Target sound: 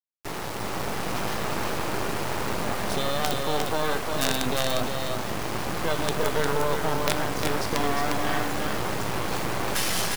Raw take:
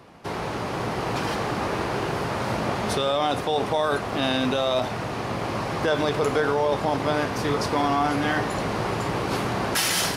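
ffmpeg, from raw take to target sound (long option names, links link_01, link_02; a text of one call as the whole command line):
ffmpeg -i in.wav -af "acrusher=bits=3:dc=4:mix=0:aa=0.000001,aecho=1:1:354:0.631" out.wav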